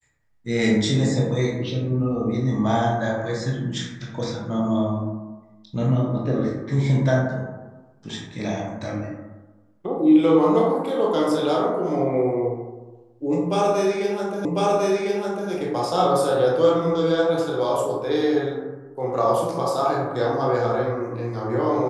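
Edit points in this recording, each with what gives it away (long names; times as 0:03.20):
0:14.45: the same again, the last 1.05 s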